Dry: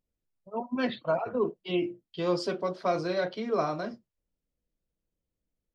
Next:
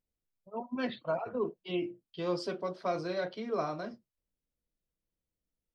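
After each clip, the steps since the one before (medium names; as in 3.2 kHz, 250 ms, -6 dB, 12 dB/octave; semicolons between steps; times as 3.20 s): band-stop 6.9 kHz, Q 16; trim -5 dB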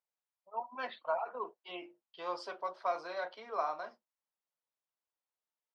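band-pass filter 890 Hz, Q 2.2; tilt EQ +4.5 dB/octave; trim +5.5 dB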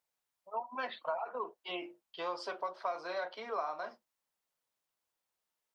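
compression 3:1, threshold -42 dBFS, peak gain reduction 10.5 dB; trim +6.5 dB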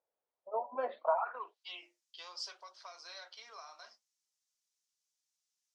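flange 0.7 Hz, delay 2 ms, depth 6 ms, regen -85%; band-pass sweep 520 Hz -> 6 kHz, 0.98–1.69 s; trim +13.5 dB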